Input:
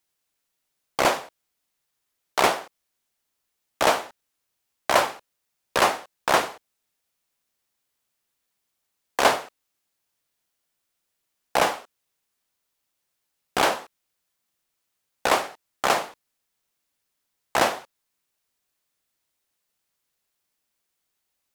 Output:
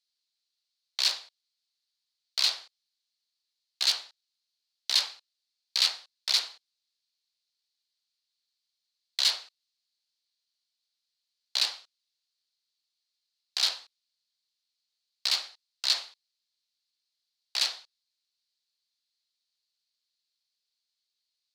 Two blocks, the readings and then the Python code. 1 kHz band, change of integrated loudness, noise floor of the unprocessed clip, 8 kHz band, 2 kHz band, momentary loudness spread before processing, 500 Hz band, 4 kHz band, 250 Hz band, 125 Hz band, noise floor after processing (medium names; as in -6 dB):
-23.5 dB, -3.5 dB, -79 dBFS, -3.0 dB, -12.0 dB, 12 LU, -28.5 dB, +5.0 dB, under -30 dB, under -30 dB, -85 dBFS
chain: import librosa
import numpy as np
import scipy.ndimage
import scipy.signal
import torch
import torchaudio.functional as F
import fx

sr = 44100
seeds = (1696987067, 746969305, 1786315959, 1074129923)

y = (np.mod(10.0 ** (12.5 / 20.0) * x + 1.0, 2.0) - 1.0) / 10.0 ** (12.5 / 20.0)
y = fx.bandpass_q(y, sr, hz=4300.0, q=5.4)
y = y * librosa.db_to_amplitude(7.5)